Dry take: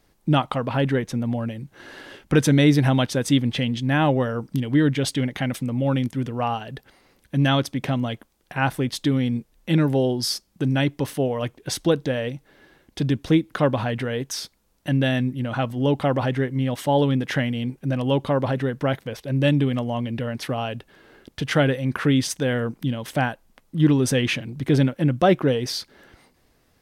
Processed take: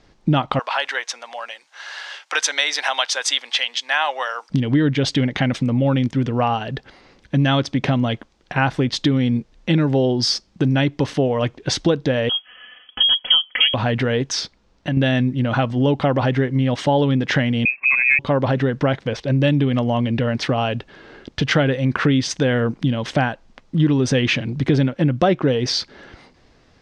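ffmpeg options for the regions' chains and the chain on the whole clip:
ffmpeg -i in.wav -filter_complex "[0:a]asettb=1/sr,asplit=3[link_01][link_02][link_03];[link_01]atrim=end=0.594[link_04];[link_02]atrim=start=0.59:end=4.5,asetpts=PTS-STARTPTS,afade=type=in:duration=0.004:curve=qsin,afade=type=out:start_time=3.906:duration=0.004:curve=qsin,highpass=frequency=770:width=0.5412,highpass=frequency=770:width=1.3066,aemphasis=mode=production:type=50fm[link_05];[link_03]atrim=start=4.496[link_06];[link_04][link_05]acrossfade=duration=0.004:curve1=hsin:curve2=qsin[link_07];[link_07][link_06]acrossfade=duration=0.004:curve1=qsin:curve2=hsin,asettb=1/sr,asplit=3[link_08][link_09][link_10];[link_08]atrim=end=12.294[link_11];[link_09]atrim=start=12.29:end=13.74,asetpts=PTS-STARTPTS,afade=type=in:duration=0.004:curve=qsin,afade=type=out:start_time=1.446:duration=0.004:curve=qsin,lowpass=frequency=2900:width_type=q:width=0.5098,lowpass=frequency=2900:width_type=q:width=0.6013,lowpass=frequency=2900:width_type=q:width=0.9,lowpass=frequency=2900:width_type=q:width=2.563,afreqshift=-3400,aecho=1:1:4:0.76,atrim=end_sample=63945[link_12];[link_10]atrim=start=13.736[link_13];[link_11][link_12]acrossfade=duration=0.004:curve1=hsin:curve2=qsin[link_14];[link_14][link_13]acrossfade=duration=0.004:curve1=qsin:curve2=hsin,asettb=1/sr,asplit=3[link_15][link_16][link_17];[link_15]atrim=end=14.414[link_18];[link_16]atrim=start=14.41:end=14.97,asetpts=PTS-STARTPTS,afade=type=in:duration=0.004:curve=qsin,afade=type=out:start_time=0.556:duration=0.004:curve=qsin,highshelf=frequency=7600:gain=-9,acompressor=threshold=-28dB:ratio=3:attack=3.2:release=140:knee=1:detection=peak[link_19];[link_17]atrim=start=14.966[link_20];[link_18][link_19]acrossfade=duration=0.004:curve1=hsin:curve2=qsin[link_21];[link_21][link_20]acrossfade=duration=0.004:curve1=qsin:curve2=hsin,asettb=1/sr,asplit=3[link_22][link_23][link_24];[link_22]atrim=end=17.654[link_25];[link_23]atrim=start=17.65:end=18.19,asetpts=PTS-STARTPTS,afade=type=in:duration=0.004:curve=qsin,afade=type=out:start_time=0.536:duration=0.004:curve=qsin,lowpass=frequency=2300:width_type=q:width=0.5098,lowpass=frequency=2300:width_type=q:width=0.6013,lowpass=frequency=2300:width_type=q:width=0.9,lowpass=frequency=2300:width_type=q:width=2.563,afreqshift=-2700,equalizer=frequency=1300:width_type=o:width=2.5:gain=5,bandreject=frequency=1300:width=7.4[link_26];[link_24]atrim=start=18.186[link_27];[link_25][link_26]acrossfade=duration=0.004:curve1=hsin:curve2=qsin[link_28];[link_28][link_27]acrossfade=duration=0.004:curve1=qsin:curve2=hsin,lowpass=frequency=6100:width=0.5412,lowpass=frequency=6100:width=1.3066,acompressor=threshold=-24dB:ratio=3,volume=8.5dB" out.wav

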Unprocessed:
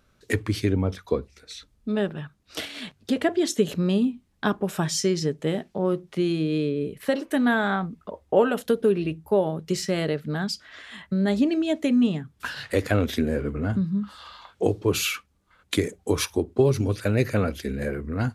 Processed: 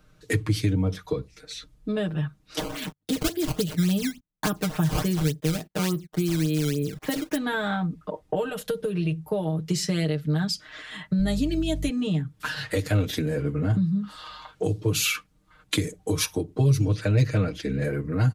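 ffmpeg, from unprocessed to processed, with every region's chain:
ffmpeg -i in.wav -filter_complex "[0:a]asettb=1/sr,asplit=3[link_01][link_02][link_03];[link_01]atrim=end=2.594[link_04];[link_02]atrim=start=2.59:end=7.37,asetpts=PTS-STARTPTS,afade=type=in:duration=0.004:curve=qsin,afade=type=out:start_time=4.776:duration=0.004:curve=qsin,agate=range=-28dB:threshold=-46dB:ratio=16:release=100:detection=peak,acrusher=samples=14:mix=1:aa=0.000001:lfo=1:lforange=22.4:lforate=3.5[link_05];[link_03]atrim=start=7.366[link_06];[link_04][link_05]acrossfade=duration=0.004:curve1=hsin:curve2=qsin[link_07];[link_07][link_06]acrossfade=duration=0.004:curve1=qsin:curve2=hsin,asettb=1/sr,asplit=3[link_08][link_09][link_10];[link_08]atrim=end=8.494[link_11];[link_09]atrim=start=8.49:end=9.27,asetpts=PTS-STARTPTS,afade=type=in:duration=0.004:curve=qsin,afade=type=out:start_time=0.776:duration=0.004:curve=qsin,equalizer=frequency=290:width=4:gain=-13,acompressor=threshold=-22dB:ratio=2.5:attack=3.2:release=140:knee=1:detection=peak[link_12];[link_10]atrim=start=9.266[link_13];[link_11][link_12]acrossfade=duration=0.004:curve1=hsin:curve2=qsin[link_14];[link_14][link_13]acrossfade=duration=0.004:curve1=qsin:curve2=hsin,asettb=1/sr,asplit=3[link_15][link_16][link_17];[link_15]atrim=end=11.194[link_18];[link_16]atrim=start=11.19:end=11.89,asetpts=PTS-STARTPTS,afade=type=in:duration=0.004:curve=qsin,afade=type=out:start_time=0.696:duration=0.004:curve=qsin,highshelf=frequency=9000:gain=10,aeval=exprs='val(0)+0.02*(sin(2*PI*50*n/s)+sin(2*PI*2*50*n/s)/2+sin(2*PI*3*50*n/s)/3+sin(2*PI*4*50*n/s)/4+sin(2*PI*5*50*n/s)/5)':channel_layout=same[link_19];[link_17]atrim=start=11.886[link_20];[link_18][link_19]acrossfade=duration=0.004:curve1=hsin:curve2=qsin[link_21];[link_21][link_20]acrossfade=duration=0.004:curve1=qsin:curve2=hsin,asettb=1/sr,asplit=3[link_22][link_23][link_24];[link_22]atrim=end=16.854[link_25];[link_23]atrim=start=16.85:end=17.84,asetpts=PTS-STARTPTS,afade=type=in:duration=0.004:curve=qsin,afade=type=out:start_time=0.986:duration=0.004:curve=qsin,lowpass=6300,asoftclip=type=hard:threshold=-11.5dB[link_26];[link_24]atrim=start=17.836[link_27];[link_25][link_26]acrossfade=duration=0.004:curve1=hsin:curve2=qsin[link_28];[link_28][link_27]acrossfade=duration=0.004:curve1=qsin:curve2=hsin,lowshelf=frequency=210:gain=6.5,aecho=1:1:6.5:0.89,acrossover=split=130|3000[link_29][link_30][link_31];[link_30]acompressor=threshold=-25dB:ratio=6[link_32];[link_29][link_32][link_31]amix=inputs=3:normalize=0" out.wav

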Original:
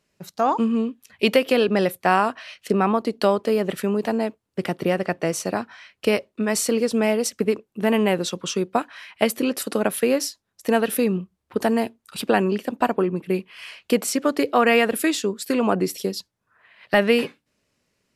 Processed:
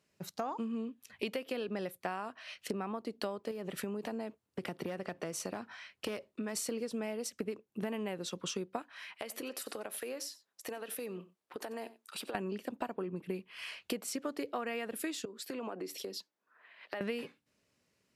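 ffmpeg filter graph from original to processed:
ffmpeg -i in.wav -filter_complex "[0:a]asettb=1/sr,asplit=3[link_01][link_02][link_03];[link_01]atrim=end=3.514[link_04];[link_02]atrim=start=3.51:end=6.57,asetpts=PTS-STARTPTS,afade=type=in:duration=0.004:curve=qsin,afade=type=out:start_time=3.056:duration=0.004:curve=qsin,aeval=exprs='clip(val(0),-1,0.224)':channel_layout=same,acompressor=threshold=-26dB:ratio=2.5:attack=3.2:release=140:knee=1:detection=peak[link_05];[link_03]atrim=start=6.566[link_06];[link_04][link_05]acrossfade=duration=0.004:curve1=hsin:curve2=qsin[link_07];[link_07][link_06]acrossfade=duration=0.004:curve1=qsin:curve2=hsin,asettb=1/sr,asplit=3[link_08][link_09][link_10];[link_08]atrim=end=9.154[link_11];[link_09]atrim=start=9.15:end=12.35,asetpts=PTS-STARTPTS,afade=type=in:duration=0.004:curve=qsin,afade=type=out:start_time=3.196:duration=0.004:curve=qsin,highpass=370,acompressor=threshold=-32dB:ratio=8:attack=3.2:release=140:knee=1:detection=peak,aecho=1:1:91:0.126,atrim=end_sample=141120[link_12];[link_10]atrim=start=12.346[link_13];[link_11][link_12]acrossfade=duration=0.004:curve1=hsin:curve2=qsin[link_14];[link_14][link_13]acrossfade=duration=0.004:curve1=qsin:curve2=hsin,asettb=1/sr,asplit=3[link_15][link_16][link_17];[link_15]atrim=end=15.254[link_18];[link_16]atrim=start=15.25:end=17.01,asetpts=PTS-STARTPTS,afade=type=in:duration=0.004:curve=qsin,afade=type=out:start_time=1.756:duration=0.004:curve=qsin,highpass=frequency=250:width=0.5412,highpass=frequency=250:width=1.3066,equalizer=frequency=9600:width_type=o:width=1.4:gain=-6.5,acompressor=threshold=-32dB:ratio=5:attack=3.2:release=140:knee=1:detection=peak[link_19];[link_17]atrim=start=17.006[link_20];[link_18][link_19]acrossfade=duration=0.004:curve1=hsin:curve2=qsin[link_21];[link_21][link_20]acrossfade=duration=0.004:curve1=qsin:curve2=hsin,highpass=61,acompressor=threshold=-30dB:ratio=6,volume=-5dB" out.wav

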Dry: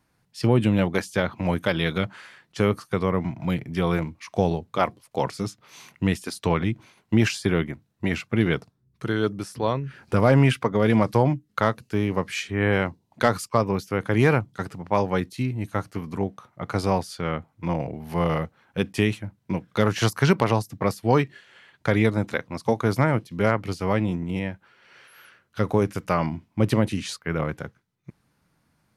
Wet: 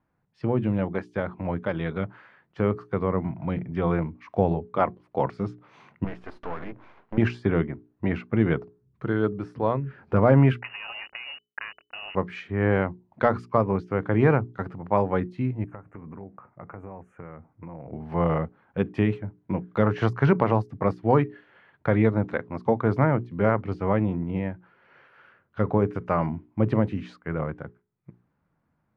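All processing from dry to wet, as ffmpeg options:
ffmpeg -i in.wav -filter_complex "[0:a]asettb=1/sr,asplit=3[link_01][link_02][link_03];[link_01]atrim=end=6.044[link_04];[link_02]atrim=start=6.04:end=7.18,asetpts=PTS-STARTPTS,afade=type=in:duration=0.004:curve=qsin,afade=type=out:start_time=1.136:duration=0.004:curve=qsin,asplit=2[link_05][link_06];[link_06]highpass=frequency=720:poles=1,volume=22dB,asoftclip=type=tanh:threshold=-8.5dB[link_07];[link_05][link_07]amix=inputs=2:normalize=0,lowpass=frequency=1800:poles=1,volume=-6dB,acompressor=threshold=-46dB:ratio=1.5:attack=3.2:release=140:knee=1:detection=peak,aeval=exprs='max(val(0),0)':channel_layout=same[link_08];[link_03]atrim=start=7.176[link_09];[link_04][link_08]acrossfade=duration=0.004:curve1=hsin:curve2=qsin[link_10];[link_10][link_09]acrossfade=duration=0.004:curve1=qsin:curve2=hsin,asettb=1/sr,asplit=3[link_11][link_12][link_13];[link_11]atrim=end=10.604[link_14];[link_12]atrim=start=10.6:end=12.15,asetpts=PTS-STARTPTS,afade=type=in:duration=0.004:curve=qsin,afade=type=out:start_time=1.546:duration=0.004:curve=qsin,acompressor=threshold=-23dB:ratio=10:attack=3.2:release=140:knee=1:detection=peak,aeval=exprs='val(0)*gte(abs(val(0)),0.0126)':channel_layout=same,lowpass=frequency=2600:width_type=q:width=0.5098,lowpass=frequency=2600:width_type=q:width=0.6013,lowpass=frequency=2600:width_type=q:width=0.9,lowpass=frequency=2600:width_type=q:width=2.563,afreqshift=-3000[link_15];[link_13]atrim=start=12.146[link_16];[link_14][link_15]acrossfade=duration=0.004:curve1=hsin:curve2=qsin[link_17];[link_17][link_16]acrossfade=duration=0.004:curve1=qsin:curve2=hsin,asettb=1/sr,asplit=3[link_18][link_19][link_20];[link_18]atrim=end=15.644[link_21];[link_19]atrim=start=15.64:end=17.92,asetpts=PTS-STARTPTS,afade=type=in:duration=0.004:curve=qsin,afade=type=out:start_time=2.276:duration=0.004:curve=qsin,acompressor=threshold=-36dB:ratio=8:attack=3.2:release=140:knee=1:detection=peak,asuperstop=centerf=4300:order=8:qfactor=1[link_22];[link_20]atrim=start=17.916[link_23];[link_21][link_22]acrossfade=duration=0.004:curve1=hsin:curve2=qsin[link_24];[link_24][link_23]acrossfade=duration=0.004:curve1=qsin:curve2=hsin,dynaudnorm=framelen=810:gausssize=7:maxgain=8dB,lowpass=1500,bandreject=frequency=60:width_type=h:width=6,bandreject=frequency=120:width_type=h:width=6,bandreject=frequency=180:width_type=h:width=6,bandreject=frequency=240:width_type=h:width=6,bandreject=frequency=300:width_type=h:width=6,bandreject=frequency=360:width_type=h:width=6,bandreject=frequency=420:width_type=h:width=6,volume=-4dB" out.wav

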